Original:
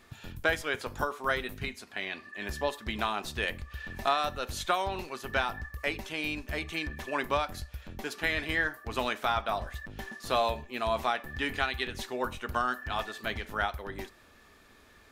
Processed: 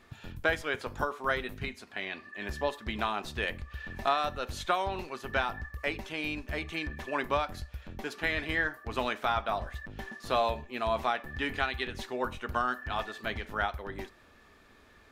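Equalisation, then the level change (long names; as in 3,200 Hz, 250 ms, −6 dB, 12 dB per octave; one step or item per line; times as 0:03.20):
high-shelf EQ 5,200 Hz −8 dB
0.0 dB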